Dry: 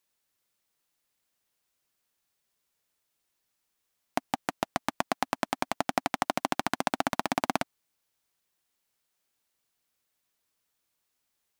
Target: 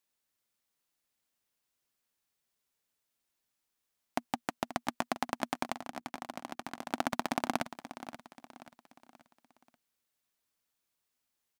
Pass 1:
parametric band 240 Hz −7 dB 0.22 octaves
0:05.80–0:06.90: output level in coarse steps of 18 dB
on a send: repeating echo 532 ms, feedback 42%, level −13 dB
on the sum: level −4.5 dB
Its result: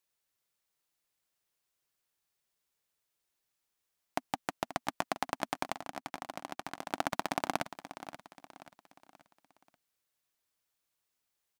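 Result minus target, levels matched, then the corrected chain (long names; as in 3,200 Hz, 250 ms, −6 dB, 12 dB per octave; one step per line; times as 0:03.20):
250 Hz band −3.5 dB
parametric band 240 Hz +4.5 dB 0.22 octaves
0:05.80–0:06.90: output level in coarse steps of 18 dB
on a send: repeating echo 532 ms, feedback 42%, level −13 dB
on the sum: level −4.5 dB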